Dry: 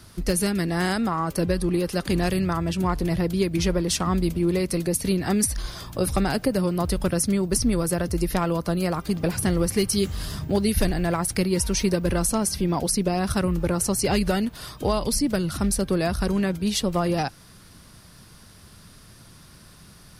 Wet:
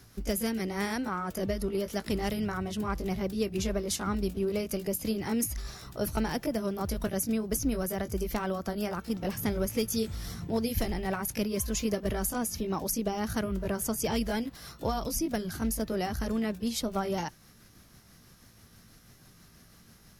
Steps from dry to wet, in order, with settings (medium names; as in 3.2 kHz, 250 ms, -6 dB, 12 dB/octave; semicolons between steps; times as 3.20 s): rotating-head pitch shifter +2 st; trim -6.5 dB